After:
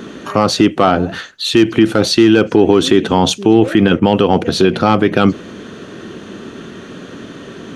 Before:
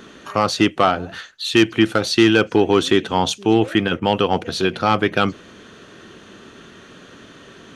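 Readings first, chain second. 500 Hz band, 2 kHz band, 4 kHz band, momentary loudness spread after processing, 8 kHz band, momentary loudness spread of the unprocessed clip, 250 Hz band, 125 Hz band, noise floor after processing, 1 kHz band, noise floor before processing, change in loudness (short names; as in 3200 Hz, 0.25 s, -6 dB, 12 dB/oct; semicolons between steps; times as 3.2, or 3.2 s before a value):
+6.0 dB, +1.0 dB, +3.5 dB, 21 LU, +5.5 dB, 7 LU, +7.0 dB, +7.0 dB, -34 dBFS, +3.5 dB, -45 dBFS, +5.5 dB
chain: bell 240 Hz +8 dB 2.8 oct; limiter -7 dBFS, peak gain reduction 9.5 dB; gain +6 dB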